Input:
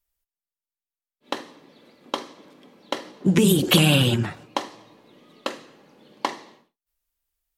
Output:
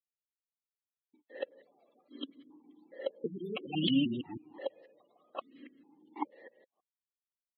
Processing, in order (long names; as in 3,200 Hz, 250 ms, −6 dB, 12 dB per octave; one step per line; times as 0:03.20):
reversed piece by piece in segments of 162 ms
gate on every frequency bin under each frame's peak −15 dB strong
formant filter that steps through the vowels 2.4 Hz